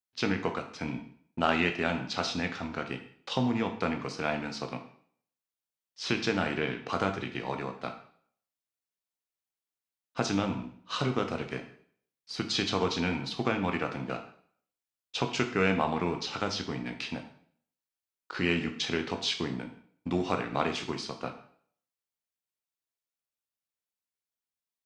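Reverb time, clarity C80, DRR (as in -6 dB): 0.55 s, 13.0 dB, 5.0 dB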